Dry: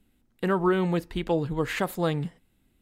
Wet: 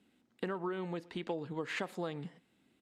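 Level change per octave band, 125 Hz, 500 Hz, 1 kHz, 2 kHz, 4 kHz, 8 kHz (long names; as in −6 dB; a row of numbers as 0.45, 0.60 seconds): −15.5, −12.0, −12.0, −9.0, −9.0, −12.0 decibels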